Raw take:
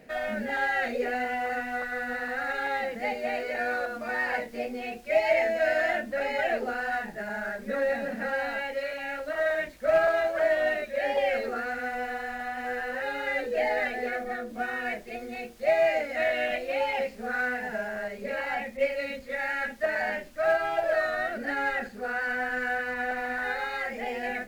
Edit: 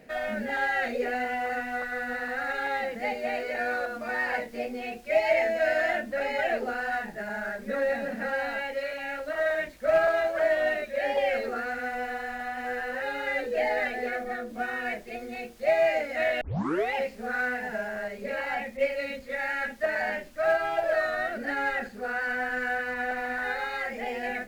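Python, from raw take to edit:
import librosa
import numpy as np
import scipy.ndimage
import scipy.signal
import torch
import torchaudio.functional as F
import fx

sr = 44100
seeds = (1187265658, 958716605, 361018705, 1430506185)

y = fx.edit(x, sr, fx.tape_start(start_s=16.41, length_s=0.53), tone=tone)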